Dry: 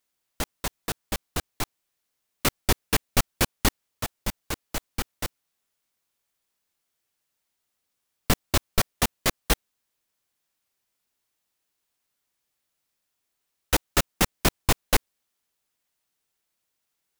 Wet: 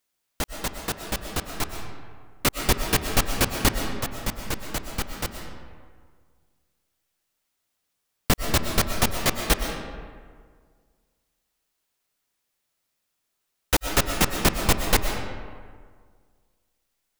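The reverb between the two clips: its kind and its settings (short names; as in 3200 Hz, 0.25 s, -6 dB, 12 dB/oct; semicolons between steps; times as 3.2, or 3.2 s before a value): digital reverb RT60 1.8 s, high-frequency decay 0.55×, pre-delay 80 ms, DRR 4.5 dB; gain +1 dB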